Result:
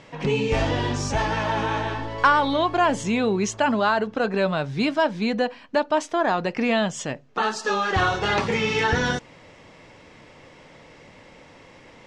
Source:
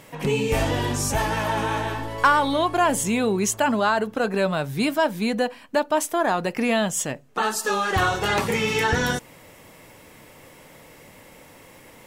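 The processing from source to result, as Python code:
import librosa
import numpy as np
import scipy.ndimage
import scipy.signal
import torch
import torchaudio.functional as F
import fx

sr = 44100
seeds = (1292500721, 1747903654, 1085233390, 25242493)

y = scipy.signal.sosfilt(scipy.signal.butter(4, 5900.0, 'lowpass', fs=sr, output='sos'), x)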